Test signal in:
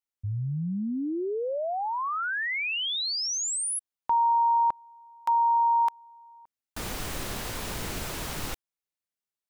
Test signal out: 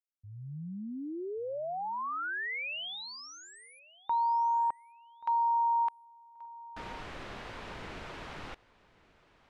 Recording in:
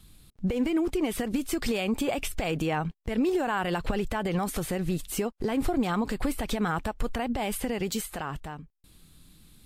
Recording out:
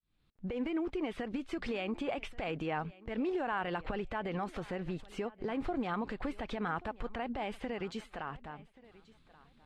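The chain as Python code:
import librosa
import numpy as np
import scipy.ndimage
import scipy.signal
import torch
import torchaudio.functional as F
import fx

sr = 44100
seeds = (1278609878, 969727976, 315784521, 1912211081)

p1 = fx.fade_in_head(x, sr, length_s=0.56)
p2 = scipy.signal.sosfilt(scipy.signal.butter(2, 2700.0, 'lowpass', fs=sr, output='sos'), p1)
p3 = fx.low_shelf(p2, sr, hz=310.0, db=-7.0)
p4 = p3 + fx.echo_feedback(p3, sr, ms=1131, feedback_pct=22, wet_db=-21.0, dry=0)
y = p4 * 10.0 ** (-5.0 / 20.0)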